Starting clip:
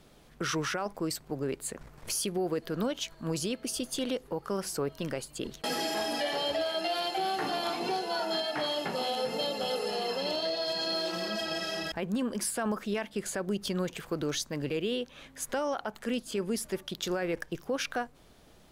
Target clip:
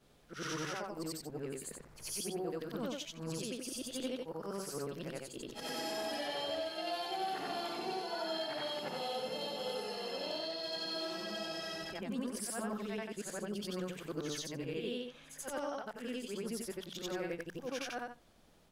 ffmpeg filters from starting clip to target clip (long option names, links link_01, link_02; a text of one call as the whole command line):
ffmpeg -i in.wav -af "afftfilt=real='re':imag='-im':win_size=8192:overlap=0.75,bandreject=frequency=60:width_type=h:width=6,bandreject=frequency=120:width_type=h:width=6,bandreject=frequency=180:width_type=h:width=6,volume=-3dB" out.wav